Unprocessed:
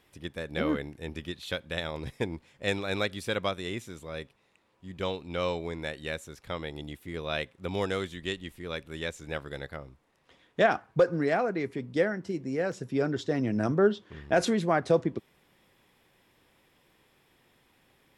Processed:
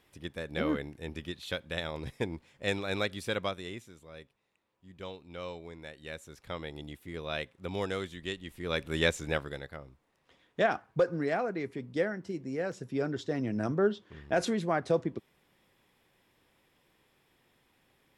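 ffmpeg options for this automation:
-af "volume=16.5dB,afade=t=out:st=3.33:d=0.6:silence=0.375837,afade=t=in:st=5.96:d=0.45:silence=0.446684,afade=t=in:st=8.45:d=0.6:silence=0.266073,afade=t=out:st=9.05:d=0.56:silence=0.251189"

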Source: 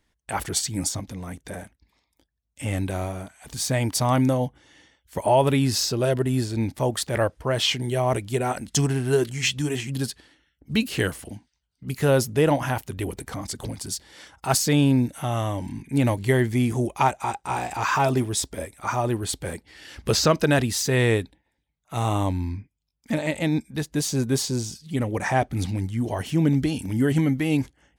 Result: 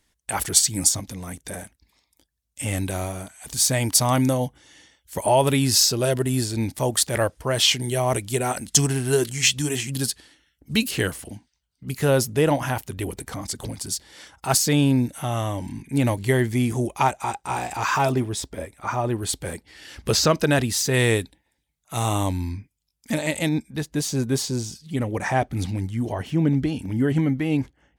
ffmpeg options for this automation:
-af "asetnsamples=n=441:p=0,asendcmd='10.91 equalizer g 3.5;18.12 equalizer g -5.5;19.18 equalizer g 3;20.94 equalizer g 10.5;23.49 equalizer g -0.5;26.12 equalizer g -9',equalizer=f=11k:t=o:w=2.3:g=10"

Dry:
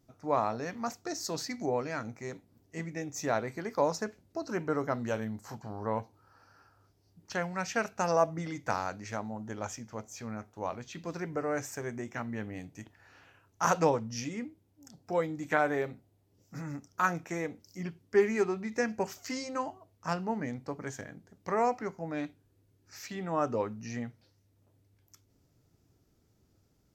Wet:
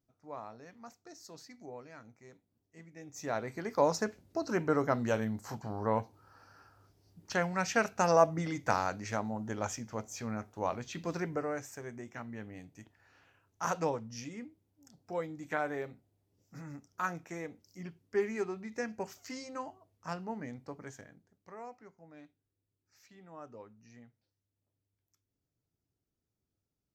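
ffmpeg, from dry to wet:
-af "volume=2dB,afade=t=in:st=2.92:d=0.4:silence=0.298538,afade=t=in:st=3.32:d=0.69:silence=0.446684,afade=t=out:st=11.18:d=0.42:silence=0.375837,afade=t=out:st=20.76:d=0.75:silence=0.251189"

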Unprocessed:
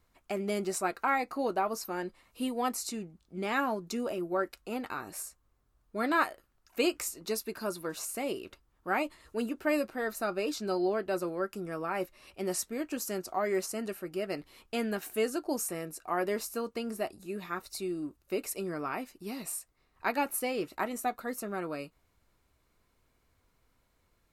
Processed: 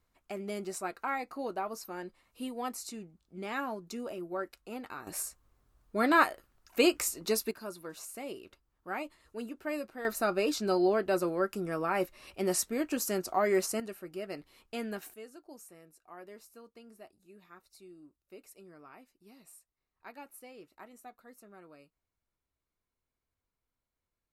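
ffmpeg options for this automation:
-af "asetnsamples=n=441:p=0,asendcmd='5.07 volume volume 3.5dB;7.51 volume volume -7dB;10.05 volume volume 3dB;13.8 volume volume -5dB;15.14 volume volume -18dB',volume=-5.5dB"

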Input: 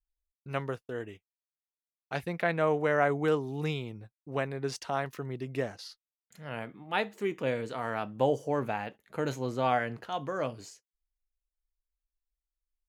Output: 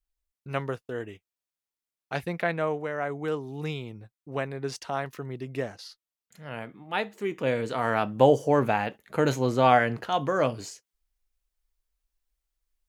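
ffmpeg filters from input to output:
-af "volume=17dB,afade=t=out:st=2.31:d=0.61:silence=0.354813,afade=t=in:st=2.92:d=1.04:silence=0.446684,afade=t=in:st=7.25:d=0.66:silence=0.446684"

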